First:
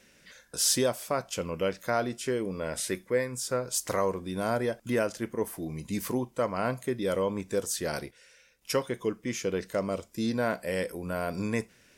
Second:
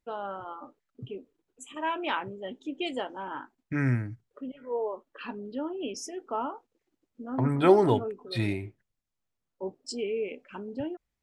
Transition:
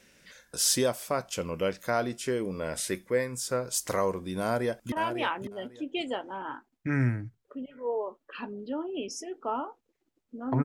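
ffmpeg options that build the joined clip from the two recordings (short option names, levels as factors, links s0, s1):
-filter_complex "[0:a]apad=whole_dur=10.64,atrim=end=10.64,atrim=end=4.922[s0];[1:a]atrim=start=1.778:end=7.5[s1];[s0][s1]acrossfade=d=0.004:c1=hsin:c2=hsin,asplit=2[s2][s3];[s3]afade=t=in:st=4.41:d=0.01,afade=t=out:st=4.92:d=0.01,aecho=0:1:550|1100|1650:0.375837|0.0751675|0.0150335[s4];[s2][s4]amix=inputs=2:normalize=0"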